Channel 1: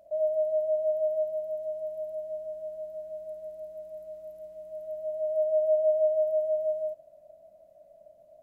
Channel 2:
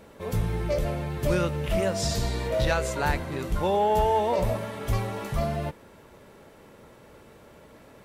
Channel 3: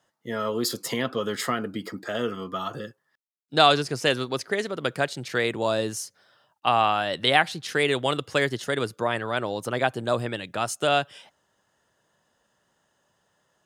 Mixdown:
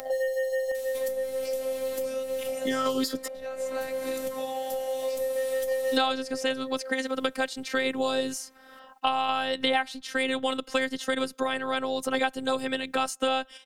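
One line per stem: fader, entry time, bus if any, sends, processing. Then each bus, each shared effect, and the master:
−6.0 dB, 0.00 s, no send, mains-hum notches 60/120/180/240/300 Hz; phases set to zero 100 Hz; leveller curve on the samples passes 1
−1.0 dB, 0.75 s, no send, first-order pre-emphasis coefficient 0.8; downward compressor 6 to 1, threshold −47 dBFS, peak gain reduction 15.5 dB
+2.5 dB, 2.40 s, muted 0:03.28–0:05.76, no send, no processing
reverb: not used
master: sample-and-hold tremolo 1.4 Hz, depth 55%; phases set to zero 263 Hz; multiband upward and downward compressor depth 100%

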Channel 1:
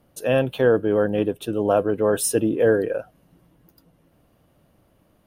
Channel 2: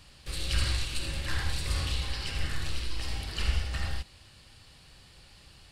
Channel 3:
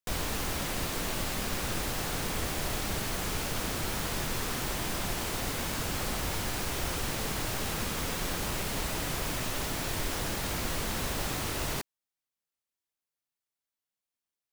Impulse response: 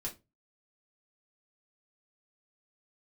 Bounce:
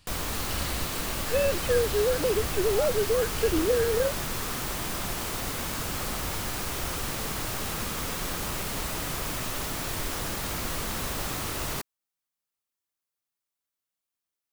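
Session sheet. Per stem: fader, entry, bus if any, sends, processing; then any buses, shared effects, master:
+2.0 dB, 1.10 s, no send, three sine waves on the formant tracks; downward compressor, threshold −25 dBFS, peak gain reduction 13.5 dB
−6.0 dB, 0.00 s, no send, no processing
0.0 dB, 0.00 s, no send, parametric band 1,200 Hz +3.5 dB 0.37 octaves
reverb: not used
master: high-shelf EQ 8,600 Hz +4 dB

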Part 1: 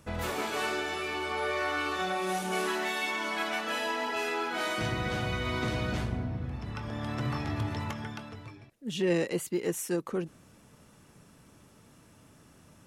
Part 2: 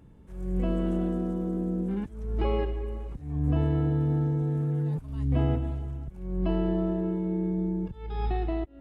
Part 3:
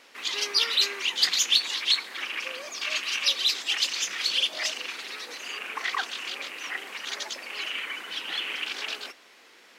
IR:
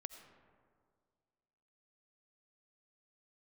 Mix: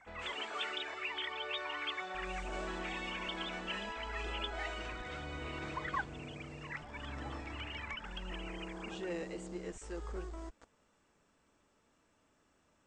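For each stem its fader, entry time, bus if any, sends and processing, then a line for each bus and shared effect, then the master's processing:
−9.5 dB, 0.00 s, no bus, no send, parametric band 5,000 Hz −5 dB 1.5 octaves
−3.0 dB, 1.85 s, bus A, no send, lower of the sound and its delayed copy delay 0.61 ms; bit reduction 7 bits
+1.0 dB, 0.00 s, bus A, no send, three sine waves on the formant tracks; reverb reduction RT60 1.8 s
bus A: 0.0 dB, parametric band 3,200 Hz −12 dB 1.9 octaves; downward compressor 2 to 1, threshold −41 dBFS, peak gain reduction 12.5 dB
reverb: not used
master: elliptic low-pass filter 8,000 Hz, stop band 40 dB; parametric band 130 Hz −14.5 dB 1.6 octaves

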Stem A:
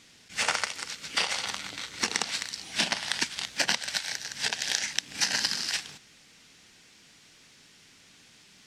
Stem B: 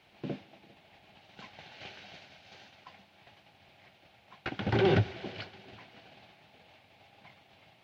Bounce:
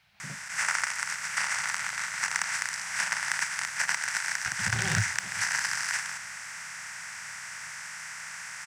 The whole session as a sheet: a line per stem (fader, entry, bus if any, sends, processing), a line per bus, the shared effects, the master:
−14.0 dB, 0.20 s, no send, compressor on every frequency bin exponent 0.4; octave-band graphic EQ 125/250/500/1,000/2,000/4,000/8,000 Hz +4/−6/+5/+8/+11/−11/+8 dB
−2.0 dB, 0.00 s, no send, no processing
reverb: not used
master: drawn EQ curve 170 Hz 0 dB, 320 Hz −21 dB, 1,500 Hz +4 dB, 3,100 Hz −2 dB, 5,000 Hz +5 dB; noise that follows the level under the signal 34 dB

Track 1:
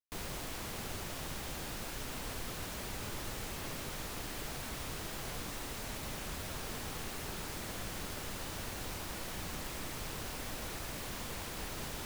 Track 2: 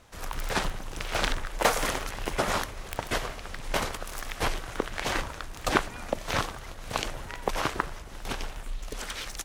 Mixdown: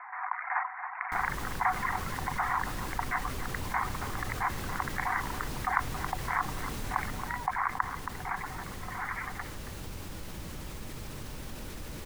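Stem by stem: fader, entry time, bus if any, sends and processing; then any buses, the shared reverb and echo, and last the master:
0:07.02 −12 dB → 0:07.27 −21 dB, 1.00 s, no send, echo send −4 dB, low-shelf EQ 350 Hz +8.5 dB; notch filter 700 Hz, Q 12
+1.0 dB, 0.00 s, no send, echo send −17 dB, Butterworth low-pass 2,100 Hz 96 dB per octave; reverb reduction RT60 1.1 s; Chebyshev high-pass with heavy ripple 720 Hz, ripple 6 dB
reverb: not used
echo: single-tap delay 274 ms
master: envelope flattener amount 50%

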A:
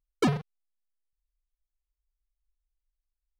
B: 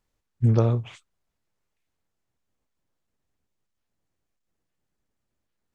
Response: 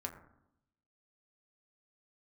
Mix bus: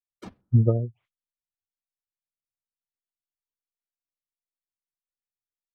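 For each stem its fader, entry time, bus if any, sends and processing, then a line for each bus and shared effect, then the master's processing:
−1.0 dB, 0.00 s, send −5.5 dB, random phases in short frames; sample-and-hold tremolo, depth 100%
+3.0 dB, 0.10 s, no send, gate on every frequency bin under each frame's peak −20 dB strong; Bessel low-pass filter 2,000 Hz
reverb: on, RT60 0.80 s, pre-delay 6 ms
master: expander for the loud parts 2.5 to 1, over −34 dBFS

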